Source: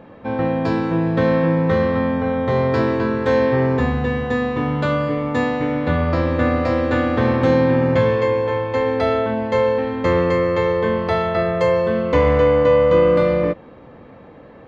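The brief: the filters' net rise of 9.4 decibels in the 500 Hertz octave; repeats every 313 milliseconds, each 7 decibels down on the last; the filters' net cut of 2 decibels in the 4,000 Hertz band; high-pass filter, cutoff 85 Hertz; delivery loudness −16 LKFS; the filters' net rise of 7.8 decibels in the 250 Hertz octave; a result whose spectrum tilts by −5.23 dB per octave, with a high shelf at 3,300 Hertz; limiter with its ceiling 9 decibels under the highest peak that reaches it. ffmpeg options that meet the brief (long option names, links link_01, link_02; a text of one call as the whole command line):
ffmpeg -i in.wav -af "highpass=85,equalizer=frequency=250:width_type=o:gain=7,equalizer=frequency=500:width_type=o:gain=8.5,highshelf=frequency=3300:gain=4,equalizer=frequency=4000:width_type=o:gain=-5.5,alimiter=limit=-5.5dB:level=0:latency=1,aecho=1:1:313|626|939|1252|1565:0.447|0.201|0.0905|0.0407|0.0183,volume=-4dB" out.wav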